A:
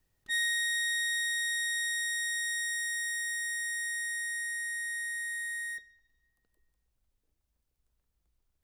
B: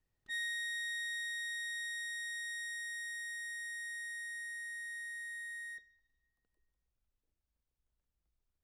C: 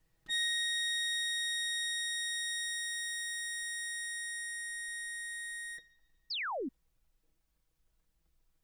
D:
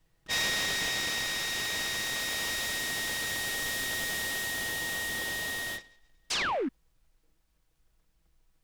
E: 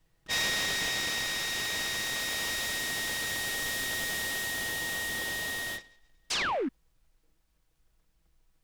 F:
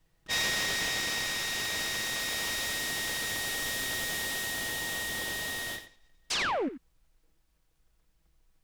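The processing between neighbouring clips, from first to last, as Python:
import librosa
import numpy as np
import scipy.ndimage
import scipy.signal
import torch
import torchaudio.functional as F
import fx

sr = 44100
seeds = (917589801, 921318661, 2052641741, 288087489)

y1 = fx.high_shelf(x, sr, hz=5800.0, db=-8.5)
y1 = y1 * 10.0 ** (-7.0 / 20.0)
y2 = y1 + 0.74 * np.pad(y1, (int(6.2 * sr / 1000.0), 0))[:len(y1)]
y2 = fx.spec_paint(y2, sr, seeds[0], shape='fall', start_s=6.3, length_s=0.39, low_hz=230.0, high_hz=5400.0, level_db=-44.0)
y2 = y2 * 10.0 ** (7.5 / 20.0)
y3 = fx.rider(y2, sr, range_db=3, speed_s=2.0)
y3 = fx.noise_mod_delay(y3, sr, seeds[1], noise_hz=1400.0, depth_ms=0.046)
y3 = y3 * 10.0 ** (5.0 / 20.0)
y4 = y3
y5 = y4 + 10.0 ** (-12.0 / 20.0) * np.pad(y4, (int(88 * sr / 1000.0), 0))[:len(y4)]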